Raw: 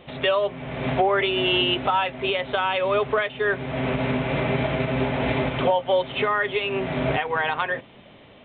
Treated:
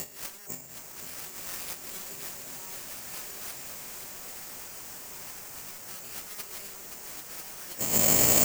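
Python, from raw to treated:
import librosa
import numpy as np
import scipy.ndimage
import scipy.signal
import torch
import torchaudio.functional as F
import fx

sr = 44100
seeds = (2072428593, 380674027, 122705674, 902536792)

p1 = fx.spec_swells(x, sr, rise_s=0.58)
p2 = fx.fold_sine(p1, sr, drive_db=19, ceiling_db=-7.5)
p3 = scipy.signal.sosfilt(scipy.signal.butter(4, 3200.0, 'lowpass', fs=sr, output='sos'), p2)
p4 = fx.transient(p3, sr, attack_db=10, sustain_db=-9)
p5 = fx.over_compress(p4, sr, threshold_db=-24.0, ratio=-0.5)
p6 = p5 + fx.echo_single(p5, sr, ms=524, db=-8.0, dry=0)
p7 = (np.kron(p6[::6], np.eye(6)[0]) * 6)[:len(p6)]
p8 = fx.rev_bloom(p7, sr, seeds[0], attack_ms=2020, drr_db=2.5)
y = F.gain(torch.from_numpy(p8), -16.5).numpy()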